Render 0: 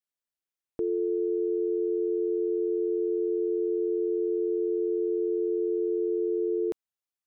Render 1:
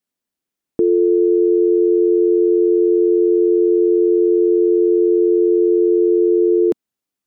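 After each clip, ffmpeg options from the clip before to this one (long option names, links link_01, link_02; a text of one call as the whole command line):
ffmpeg -i in.wav -af "equalizer=frequency=240:width_type=o:width=1.6:gain=11.5,volume=7dB" out.wav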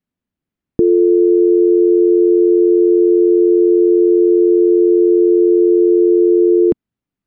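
ffmpeg -i in.wav -af "bass=frequency=250:gain=15,treble=frequency=4000:gain=-14" out.wav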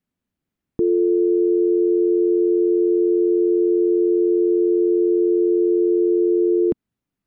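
ffmpeg -i in.wav -af "alimiter=limit=-12.5dB:level=0:latency=1:release=76,volume=1dB" out.wav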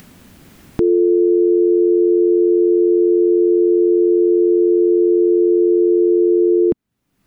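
ffmpeg -i in.wav -af "acompressor=mode=upward:threshold=-21dB:ratio=2.5,volume=4dB" out.wav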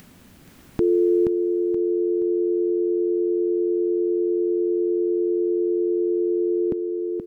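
ffmpeg -i in.wav -af "aecho=1:1:476|952|1428|1904:0.501|0.17|0.0579|0.0197,volume=-5dB" out.wav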